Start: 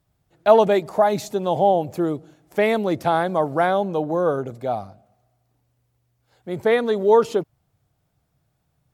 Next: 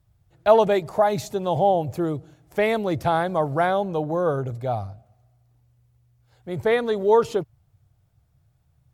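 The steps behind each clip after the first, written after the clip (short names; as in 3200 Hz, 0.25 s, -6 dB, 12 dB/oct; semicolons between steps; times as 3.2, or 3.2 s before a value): resonant low shelf 150 Hz +9 dB, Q 1.5; gain -1.5 dB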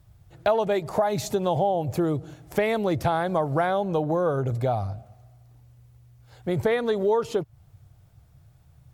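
compressor 4:1, threshold -31 dBFS, peak gain reduction 17.5 dB; gain +8.5 dB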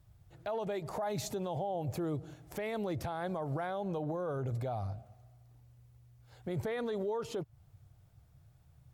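limiter -21.5 dBFS, peak gain reduction 11 dB; gain -7 dB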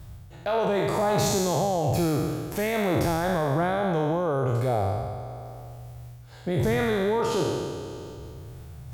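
spectral trails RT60 1.82 s; reverse; upward compressor, threshold -40 dBFS; reverse; gain +8.5 dB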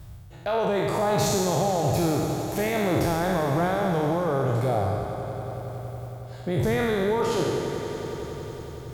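swelling echo 92 ms, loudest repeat 5, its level -17 dB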